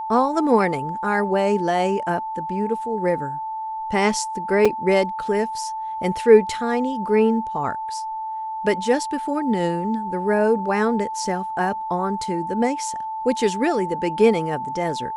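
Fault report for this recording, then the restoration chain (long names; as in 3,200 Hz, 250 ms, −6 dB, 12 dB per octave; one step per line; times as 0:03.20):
whistle 880 Hz −26 dBFS
0:04.65: drop-out 4.6 ms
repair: notch filter 880 Hz, Q 30
repair the gap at 0:04.65, 4.6 ms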